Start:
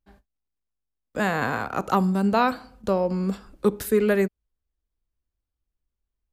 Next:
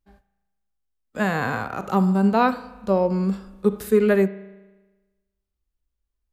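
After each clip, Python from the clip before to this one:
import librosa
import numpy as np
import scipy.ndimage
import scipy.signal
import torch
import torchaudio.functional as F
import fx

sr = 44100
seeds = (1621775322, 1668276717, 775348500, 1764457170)

y = fx.rev_spring(x, sr, rt60_s=1.2, pass_ms=(36,), chirp_ms=65, drr_db=16.5)
y = fx.hpss(y, sr, part='percussive', gain_db=-10)
y = y * 10.0 ** (3.5 / 20.0)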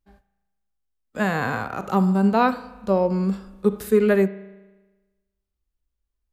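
y = x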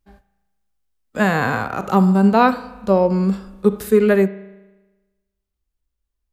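y = fx.rider(x, sr, range_db=3, speed_s=2.0)
y = y * 10.0 ** (4.5 / 20.0)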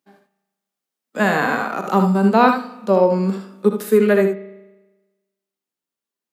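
y = scipy.signal.sosfilt(scipy.signal.butter(4, 190.0, 'highpass', fs=sr, output='sos'), x)
y = fx.room_early_taps(y, sr, ms=(64, 77), db=(-11.0, -8.5))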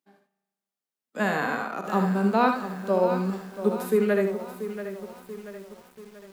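y = fx.echo_crushed(x, sr, ms=684, feedback_pct=55, bits=6, wet_db=-11)
y = y * 10.0 ** (-8.0 / 20.0)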